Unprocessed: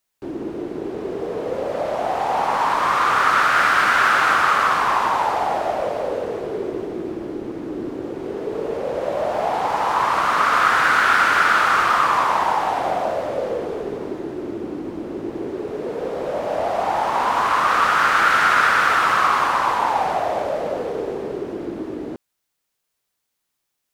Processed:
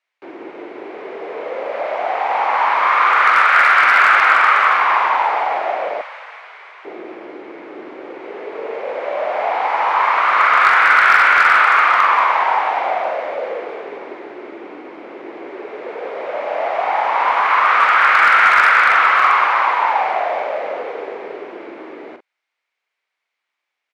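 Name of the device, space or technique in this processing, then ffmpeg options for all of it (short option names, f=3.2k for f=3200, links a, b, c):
megaphone: -filter_complex "[0:a]highpass=610,lowpass=2.9k,equalizer=f=2.2k:t=o:w=0.38:g=9,asoftclip=type=hard:threshold=-7.5dB,asplit=2[a][b];[b]adelay=44,volume=-8dB[c];[a][c]amix=inputs=2:normalize=0,asettb=1/sr,asplit=3[d][e][f];[d]atrim=end=6.014[g];[e]atrim=start=6.01:end=6.85,asetpts=PTS-STARTPTS,afade=t=in:d=0.004:c=qsin,afade=t=out:st=0.836:d=0.004:c=qsin,highpass=f=990:w=0.5412,highpass=f=990:w=1.3066[h];[f]atrim=start=6.846[i];[g][h]acrossfade=d=0.004:c1=hsin:c2=qsin[j];[j][i]acrossfade=d=0.004:c1=qsin:c2=hsin,volume=3.5dB"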